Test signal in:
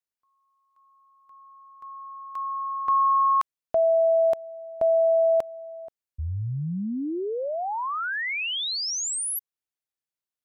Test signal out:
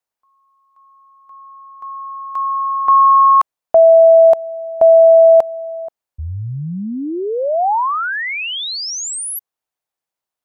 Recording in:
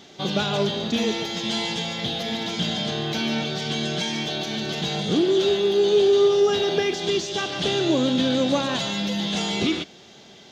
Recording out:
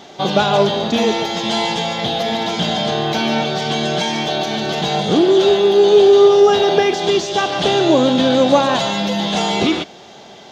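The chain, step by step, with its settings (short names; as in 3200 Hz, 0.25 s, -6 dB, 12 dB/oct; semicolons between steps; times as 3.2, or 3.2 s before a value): bell 790 Hz +9.5 dB 1.5 oct; gain +4.5 dB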